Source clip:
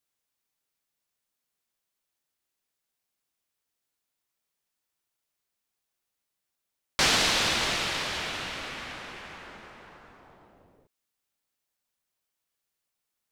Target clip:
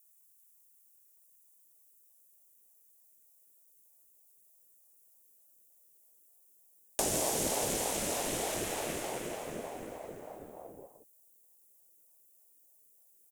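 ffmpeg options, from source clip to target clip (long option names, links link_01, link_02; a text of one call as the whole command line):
ffmpeg -i in.wav -filter_complex "[0:a]aexciter=amount=12.8:drive=3.3:freq=6600,acrossover=split=190|820[link_01][link_02][link_03];[link_01]acompressor=threshold=-54dB:ratio=4[link_04];[link_02]acompressor=threshold=-43dB:ratio=4[link_05];[link_03]acompressor=threshold=-32dB:ratio=4[link_06];[link_04][link_05][link_06]amix=inputs=3:normalize=0,asubboost=boost=10:cutoff=240,asplit=2[link_07][link_08];[link_08]aecho=0:1:165:0.376[link_09];[link_07][link_09]amix=inputs=2:normalize=0,aeval=exprs='val(0)*sin(2*PI*510*n/s+510*0.25/3.3*sin(2*PI*3.3*n/s))':channel_layout=same" out.wav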